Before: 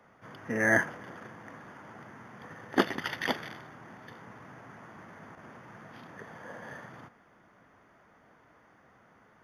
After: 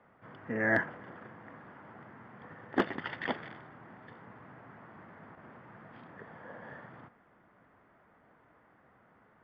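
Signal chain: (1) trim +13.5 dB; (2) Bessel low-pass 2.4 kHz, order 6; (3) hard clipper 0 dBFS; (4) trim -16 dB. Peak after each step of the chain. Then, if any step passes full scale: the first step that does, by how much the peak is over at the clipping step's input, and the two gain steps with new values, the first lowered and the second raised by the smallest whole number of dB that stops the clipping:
+5.5 dBFS, +4.5 dBFS, 0.0 dBFS, -16.0 dBFS; step 1, 4.5 dB; step 1 +8.5 dB, step 4 -11 dB

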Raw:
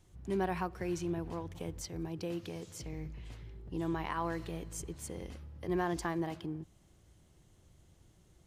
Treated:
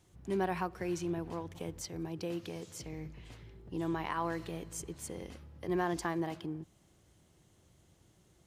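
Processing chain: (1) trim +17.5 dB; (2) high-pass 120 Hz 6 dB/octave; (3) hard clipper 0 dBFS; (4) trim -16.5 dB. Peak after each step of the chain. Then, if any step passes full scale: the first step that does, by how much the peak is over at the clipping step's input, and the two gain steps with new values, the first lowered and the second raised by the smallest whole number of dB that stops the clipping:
-5.5 dBFS, -4.0 dBFS, -4.0 dBFS, -20.5 dBFS; nothing clips

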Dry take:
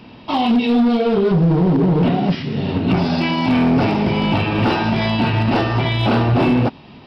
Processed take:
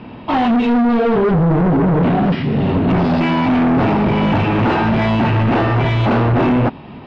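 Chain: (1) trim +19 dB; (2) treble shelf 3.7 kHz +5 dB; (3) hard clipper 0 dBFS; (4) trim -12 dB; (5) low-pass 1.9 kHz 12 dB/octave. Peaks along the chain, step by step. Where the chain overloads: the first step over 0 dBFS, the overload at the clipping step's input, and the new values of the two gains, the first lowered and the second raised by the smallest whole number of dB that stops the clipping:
+8.5 dBFS, +9.5 dBFS, 0.0 dBFS, -12.0 dBFS, -11.5 dBFS; step 1, 9.5 dB; step 1 +9 dB, step 4 -2 dB

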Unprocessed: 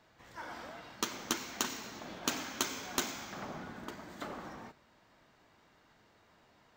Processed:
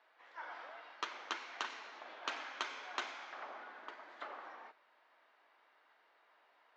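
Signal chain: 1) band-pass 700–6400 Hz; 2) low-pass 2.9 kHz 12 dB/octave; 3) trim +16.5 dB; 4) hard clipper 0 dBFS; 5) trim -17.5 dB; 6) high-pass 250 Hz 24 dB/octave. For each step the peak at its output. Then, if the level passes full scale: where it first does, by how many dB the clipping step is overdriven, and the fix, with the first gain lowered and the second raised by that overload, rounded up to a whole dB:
-17.5 dBFS, -20.0 dBFS, -3.5 dBFS, -3.5 dBFS, -21.0 dBFS, -20.5 dBFS; nothing clips

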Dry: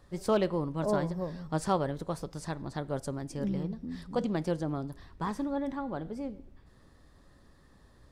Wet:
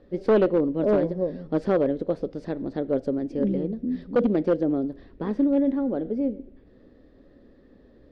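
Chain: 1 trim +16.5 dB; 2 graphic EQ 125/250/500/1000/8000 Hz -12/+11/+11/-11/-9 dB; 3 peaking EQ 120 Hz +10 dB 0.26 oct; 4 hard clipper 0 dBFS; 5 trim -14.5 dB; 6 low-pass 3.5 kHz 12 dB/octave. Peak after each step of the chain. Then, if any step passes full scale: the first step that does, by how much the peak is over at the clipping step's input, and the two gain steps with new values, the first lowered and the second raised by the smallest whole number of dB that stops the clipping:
+0.5 dBFS, +8.5 dBFS, +8.5 dBFS, 0.0 dBFS, -14.5 dBFS, -14.0 dBFS; step 1, 8.5 dB; step 1 +7.5 dB, step 5 -5.5 dB

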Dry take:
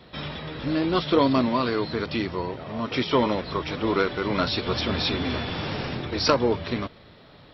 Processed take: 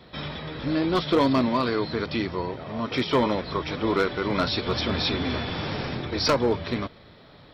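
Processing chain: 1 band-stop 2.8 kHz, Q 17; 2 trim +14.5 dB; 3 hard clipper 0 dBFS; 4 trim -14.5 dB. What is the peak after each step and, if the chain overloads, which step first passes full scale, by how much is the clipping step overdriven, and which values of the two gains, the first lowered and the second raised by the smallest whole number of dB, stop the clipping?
-5.0 dBFS, +9.5 dBFS, 0.0 dBFS, -14.5 dBFS; step 2, 9.5 dB; step 2 +4.5 dB, step 4 -4.5 dB

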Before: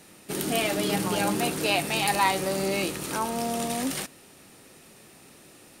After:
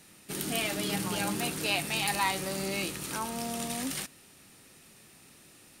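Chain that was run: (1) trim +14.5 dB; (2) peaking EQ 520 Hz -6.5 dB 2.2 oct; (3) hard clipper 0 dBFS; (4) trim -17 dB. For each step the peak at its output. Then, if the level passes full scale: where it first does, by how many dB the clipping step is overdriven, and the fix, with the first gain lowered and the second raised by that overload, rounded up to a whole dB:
+7.0 dBFS, +6.5 dBFS, 0.0 dBFS, -17.0 dBFS; step 1, 6.5 dB; step 1 +7.5 dB, step 4 -10 dB

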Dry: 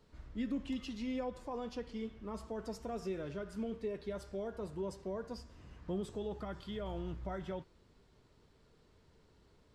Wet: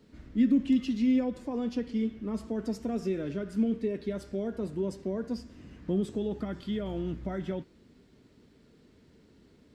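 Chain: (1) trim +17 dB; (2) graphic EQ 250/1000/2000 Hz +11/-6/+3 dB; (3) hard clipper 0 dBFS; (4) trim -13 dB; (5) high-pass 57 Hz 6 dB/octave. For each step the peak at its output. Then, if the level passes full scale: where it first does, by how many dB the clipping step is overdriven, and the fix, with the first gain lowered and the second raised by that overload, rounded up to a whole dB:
-10.5 dBFS, -2.5 dBFS, -2.5 dBFS, -15.5 dBFS, -15.5 dBFS; nothing clips

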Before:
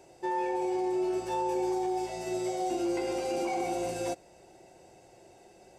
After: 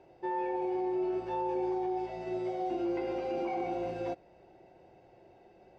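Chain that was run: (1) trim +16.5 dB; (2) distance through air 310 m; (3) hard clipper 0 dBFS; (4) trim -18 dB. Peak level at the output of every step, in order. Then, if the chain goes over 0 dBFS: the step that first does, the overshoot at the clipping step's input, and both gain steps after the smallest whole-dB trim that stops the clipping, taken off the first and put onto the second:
-5.0 dBFS, -6.0 dBFS, -6.0 dBFS, -24.0 dBFS; nothing clips

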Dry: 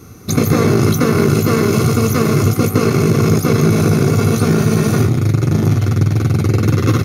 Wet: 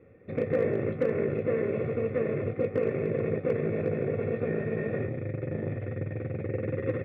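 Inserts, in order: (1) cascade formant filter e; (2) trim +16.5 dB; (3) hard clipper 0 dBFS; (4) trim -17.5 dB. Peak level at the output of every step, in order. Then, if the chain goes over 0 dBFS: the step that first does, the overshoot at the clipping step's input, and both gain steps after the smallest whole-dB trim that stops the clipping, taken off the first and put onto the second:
-13.0 dBFS, +3.5 dBFS, 0.0 dBFS, -17.5 dBFS; step 2, 3.5 dB; step 2 +12.5 dB, step 4 -13.5 dB

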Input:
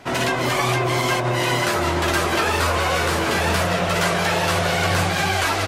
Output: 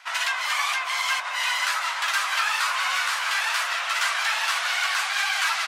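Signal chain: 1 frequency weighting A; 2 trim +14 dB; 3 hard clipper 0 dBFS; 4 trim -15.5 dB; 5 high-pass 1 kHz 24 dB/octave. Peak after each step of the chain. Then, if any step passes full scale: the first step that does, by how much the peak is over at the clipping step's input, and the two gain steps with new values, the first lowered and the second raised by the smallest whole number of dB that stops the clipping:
-7.5 dBFS, +6.5 dBFS, 0.0 dBFS, -15.5 dBFS, -11.5 dBFS; step 2, 6.5 dB; step 2 +7 dB, step 4 -8.5 dB

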